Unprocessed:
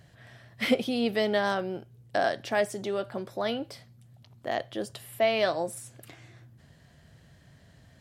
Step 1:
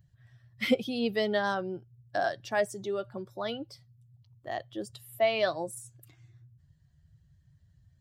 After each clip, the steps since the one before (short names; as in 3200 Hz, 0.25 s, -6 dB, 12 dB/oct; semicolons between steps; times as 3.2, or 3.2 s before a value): per-bin expansion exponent 1.5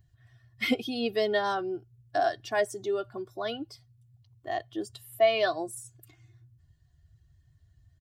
comb 2.8 ms, depth 68%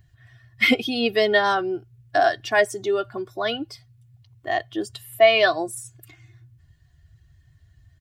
bell 2100 Hz +6 dB 1.4 oct; gain +6.5 dB